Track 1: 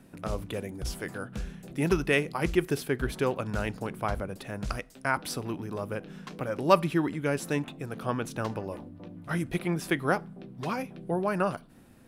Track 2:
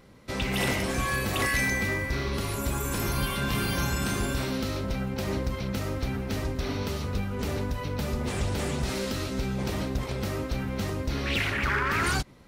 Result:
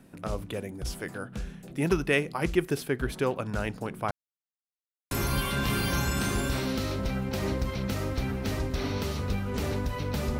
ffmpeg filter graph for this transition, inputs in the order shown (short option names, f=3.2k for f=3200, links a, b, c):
-filter_complex "[0:a]apad=whole_dur=10.39,atrim=end=10.39,asplit=2[a][b];[a]atrim=end=4.11,asetpts=PTS-STARTPTS,afade=t=out:st=4.106:d=0.004:c=hsin[c];[b]atrim=start=4.11:end=5.11,asetpts=PTS-STARTPTS,volume=0[d];[1:a]atrim=start=2.96:end=8.24,asetpts=PTS-STARTPTS,afade=t=in:d=0.004:c=hsin[e];[c][d][e]concat=n=3:v=0:a=1"